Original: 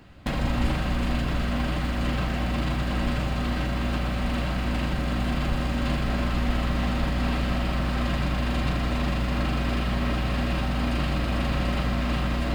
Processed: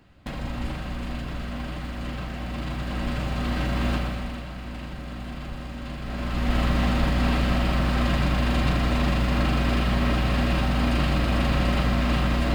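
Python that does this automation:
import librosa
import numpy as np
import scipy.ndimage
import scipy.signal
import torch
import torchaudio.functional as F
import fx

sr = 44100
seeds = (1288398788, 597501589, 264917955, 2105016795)

y = fx.gain(x, sr, db=fx.line((2.37, -6.0), (3.9, 2.5), (4.44, -9.0), (5.95, -9.0), (6.59, 3.0)))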